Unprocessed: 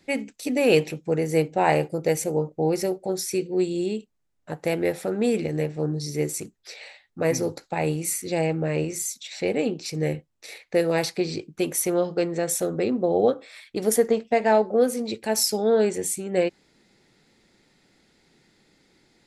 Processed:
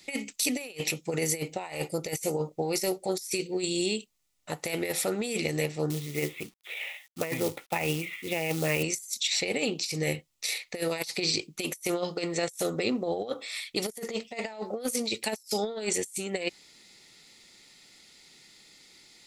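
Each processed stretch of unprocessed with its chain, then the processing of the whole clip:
5.90–8.83 s: steep low-pass 3.5 kHz 96 dB/octave + companded quantiser 6-bit
whole clip: tilt shelf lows -9 dB, about 1.4 kHz; band-stop 1.6 kHz, Q 5.4; compressor with a negative ratio -30 dBFS, ratio -0.5

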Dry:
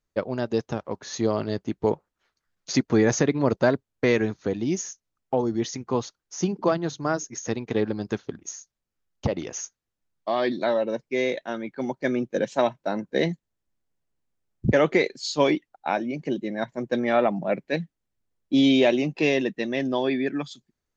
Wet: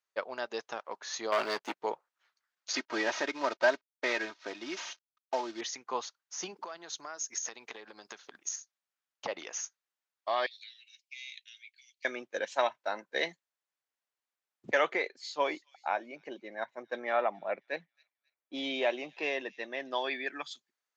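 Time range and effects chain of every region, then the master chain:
1.32–1.77 s: high-pass 160 Hz + waveshaping leveller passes 3
2.75–5.61 s: CVSD coder 32 kbps + comb 3.2 ms, depth 58%
6.56–8.56 s: compression 12:1, threshold -31 dBFS + treble shelf 5 kHz +9.5 dB
10.46–12.05 s: compression 5:1, threshold -26 dBFS + steep high-pass 2.4 kHz 48 dB/octave
14.93–19.91 s: treble shelf 2.2 kHz -11.5 dB + feedback echo behind a high-pass 268 ms, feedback 32%, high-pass 5.1 kHz, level -14 dB
whole clip: high-pass 900 Hz 12 dB/octave; treble shelf 6 kHz -7 dB

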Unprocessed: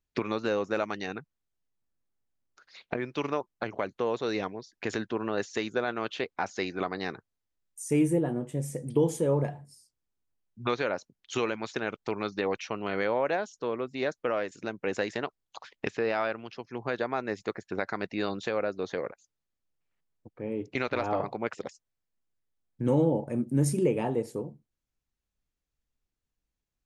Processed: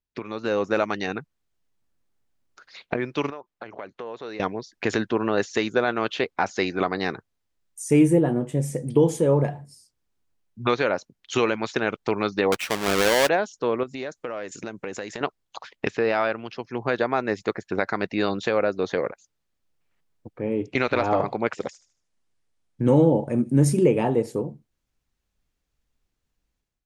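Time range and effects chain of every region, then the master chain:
3.30–4.40 s: low-pass 3.2 kHz 6 dB/octave + compression 2.5:1, threshold -42 dBFS + bass shelf 290 Hz -9 dB
12.52–13.29 s: square wave that keeps the level + bass shelf 500 Hz -7.5 dB
13.83–15.21 s: peaking EQ 7 kHz +7.5 dB 0.58 oct + compression 3:1, threshold -40 dBFS
20.43–23.63 s: careless resampling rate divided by 2×, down none, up filtered + feedback echo behind a high-pass 76 ms, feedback 37%, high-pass 4.2 kHz, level -11.5 dB
whole clip: treble shelf 9 kHz -6 dB; level rider gain up to 14 dB; trim -5 dB

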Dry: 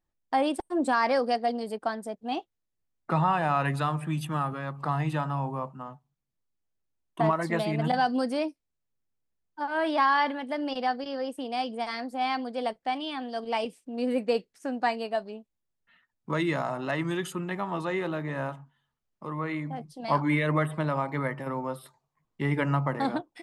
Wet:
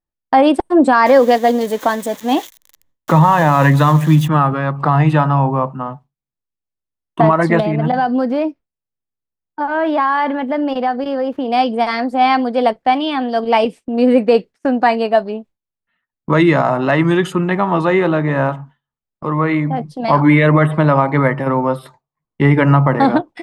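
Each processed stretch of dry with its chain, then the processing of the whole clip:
1.06–4.28 s: zero-crossing glitches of -29.5 dBFS + rippled EQ curve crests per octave 1.1, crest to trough 7 dB
7.60–11.48 s: median filter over 5 samples + treble shelf 3.7 kHz -9 dB + compression 2:1, threshold -33 dBFS
whole clip: gate with hold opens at -40 dBFS; low-pass 2.2 kHz 6 dB/octave; loudness maximiser +17.5 dB; trim -1 dB

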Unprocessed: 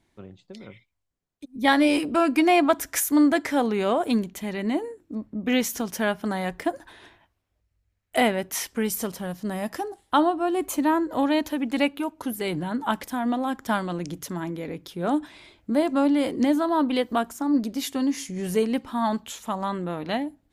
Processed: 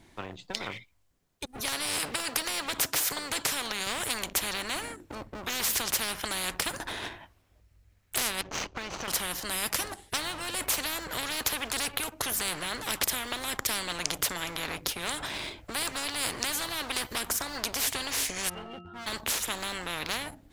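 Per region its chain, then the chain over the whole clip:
1.60–3.87 s: high-pass 150 Hz + compression 2:1, threshold -25 dBFS
8.41–9.08 s: median filter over 25 samples + Chebyshev low-pass 6.6 kHz, order 4 + compression 4:1, threshold -36 dBFS
18.48–19.06 s: pitch-class resonator F, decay 0.29 s + whistle 1.3 kHz -64 dBFS
whole clip: waveshaping leveller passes 1; spectrum-flattening compressor 10:1; trim +3.5 dB

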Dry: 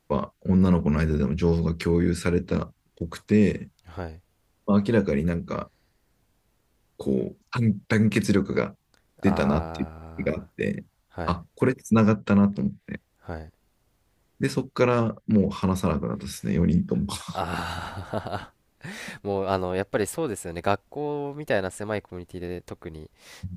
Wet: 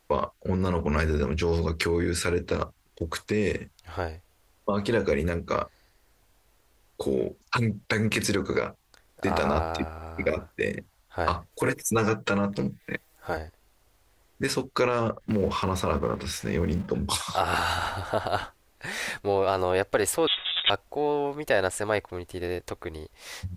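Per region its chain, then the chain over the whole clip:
11.52–13.37 s: treble shelf 9.4 kHz +9.5 dB + comb 6.4 ms, depth 74%
15.21–16.91 s: companding laws mixed up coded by mu + low-pass 3.9 kHz 6 dB/octave
20.27–20.70 s: comb filter that takes the minimum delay 5.4 ms + doubling 25 ms -10.5 dB + frequency inversion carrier 3.7 kHz
whole clip: peak limiter -16.5 dBFS; peaking EQ 170 Hz -12.5 dB 1.5 oct; trim +6.5 dB

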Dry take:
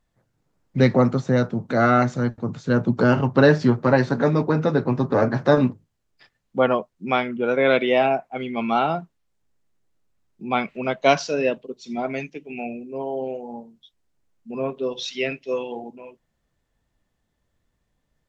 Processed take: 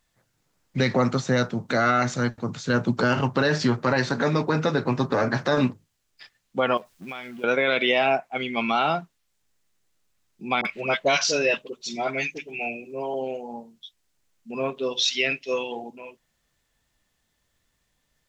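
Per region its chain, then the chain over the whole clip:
6.77–7.44 s: companding laws mixed up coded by mu + compression 8:1, threshold -34 dBFS
10.61–13.14 s: band-stop 250 Hz, Q 8 + upward compressor, threshold -35 dBFS + phase dispersion highs, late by 44 ms, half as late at 910 Hz
whole clip: tilt shelf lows -6.5 dB, about 1.3 kHz; peak limiter -15 dBFS; trim +3.5 dB

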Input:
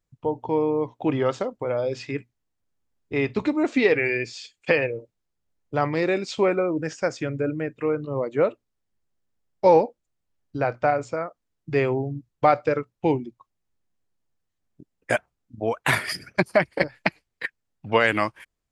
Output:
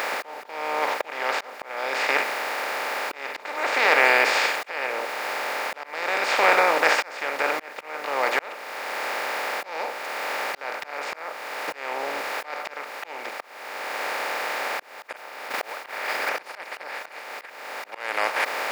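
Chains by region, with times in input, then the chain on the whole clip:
15.16–16.29 s: brick-wall FIR low-pass 5.4 kHz + modulation noise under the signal 14 dB + upward expansion, over -30 dBFS
whole clip: spectral levelling over time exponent 0.2; high-pass 930 Hz 12 dB/octave; slow attack 670 ms

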